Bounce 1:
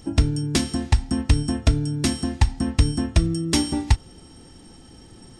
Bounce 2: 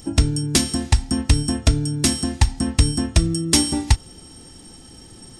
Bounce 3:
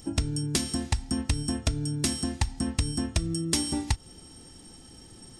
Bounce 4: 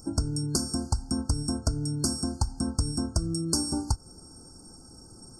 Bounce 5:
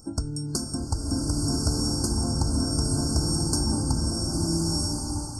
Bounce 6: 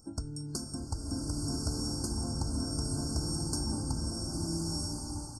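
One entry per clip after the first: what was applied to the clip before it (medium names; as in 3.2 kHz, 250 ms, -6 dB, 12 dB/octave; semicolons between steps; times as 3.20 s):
treble shelf 5.5 kHz +10.5 dB; trim +1.5 dB
compression, threshold -16 dBFS, peak gain reduction 7.5 dB; trim -6 dB
FFT band-reject 1.6–4.3 kHz
swelling reverb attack 1280 ms, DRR -4 dB; trim -1.5 dB
delay 225 ms -23.5 dB; trim -8.5 dB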